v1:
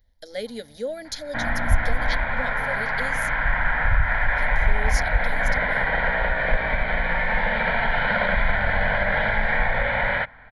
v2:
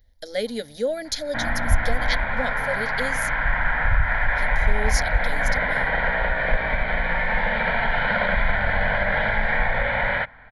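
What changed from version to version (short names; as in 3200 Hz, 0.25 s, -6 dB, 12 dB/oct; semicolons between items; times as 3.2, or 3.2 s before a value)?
speech +5.0 dB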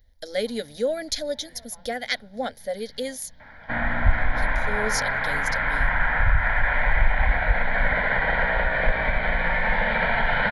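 second sound: entry +2.35 s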